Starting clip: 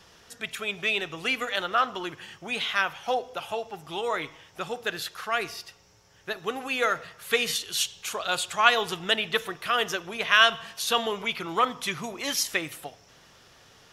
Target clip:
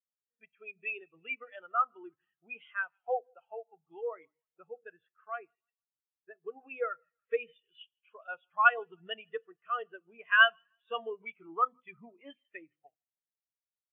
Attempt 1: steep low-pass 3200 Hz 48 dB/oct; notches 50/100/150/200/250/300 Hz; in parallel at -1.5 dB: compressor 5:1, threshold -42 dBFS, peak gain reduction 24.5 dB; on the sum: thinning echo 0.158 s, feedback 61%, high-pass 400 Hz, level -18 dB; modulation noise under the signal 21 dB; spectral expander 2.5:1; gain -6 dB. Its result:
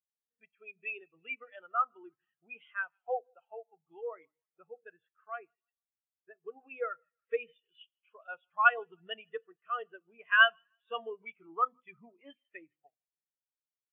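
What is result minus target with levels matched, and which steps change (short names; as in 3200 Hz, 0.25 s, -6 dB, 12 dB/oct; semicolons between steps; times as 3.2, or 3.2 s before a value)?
compressor: peak gain reduction +7 dB
change: compressor 5:1, threshold -33.5 dBFS, peak gain reduction 18 dB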